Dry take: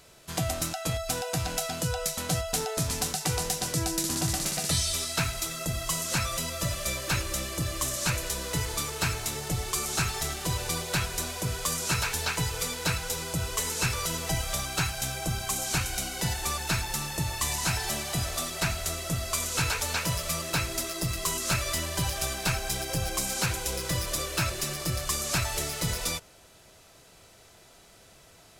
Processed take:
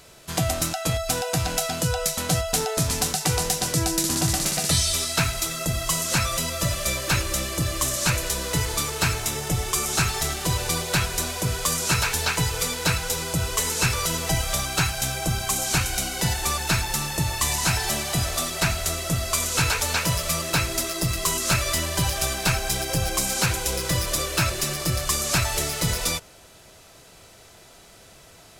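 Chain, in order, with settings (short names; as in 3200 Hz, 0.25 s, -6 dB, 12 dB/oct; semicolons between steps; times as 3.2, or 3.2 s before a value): 9.2–9.94 notch 4300 Hz, Q 11; gain +5.5 dB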